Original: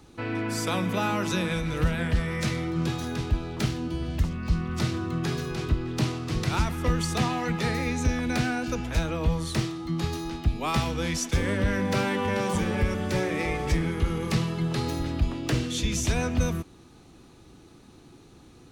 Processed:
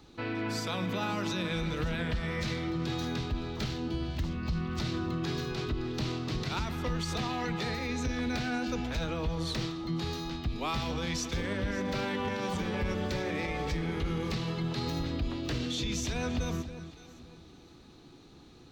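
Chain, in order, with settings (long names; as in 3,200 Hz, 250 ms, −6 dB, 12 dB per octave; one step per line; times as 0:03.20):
graphic EQ with 15 bands 100 Hz −3 dB, 4,000 Hz +6 dB, 10,000 Hz −11 dB
brickwall limiter −21.5 dBFS, peak gain reduction 7.5 dB
delay that swaps between a low-pass and a high-pass 282 ms, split 1,100 Hz, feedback 51%, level −10 dB
level −3 dB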